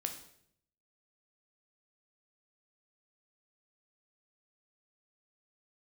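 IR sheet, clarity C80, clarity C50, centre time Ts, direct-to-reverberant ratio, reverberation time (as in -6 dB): 12.0 dB, 9.0 dB, 15 ms, 4.5 dB, 0.70 s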